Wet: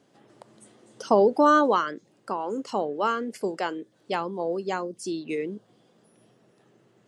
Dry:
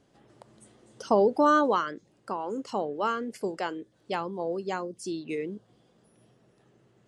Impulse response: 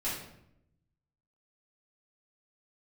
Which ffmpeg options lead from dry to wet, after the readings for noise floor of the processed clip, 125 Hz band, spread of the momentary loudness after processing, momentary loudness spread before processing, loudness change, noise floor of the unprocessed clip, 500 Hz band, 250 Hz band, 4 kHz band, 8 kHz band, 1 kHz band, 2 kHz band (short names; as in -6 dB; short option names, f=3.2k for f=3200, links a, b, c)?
-63 dBFS, +1.5 dB, 16 LU, 16 LU, +3.0 dB, -66 dBFS, +3.0 dB, +2.5 dB, +3.0 dB, +3.0 dB, +3.0 dB, +3.0 dB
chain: -af "highpass=150,volume=3dB"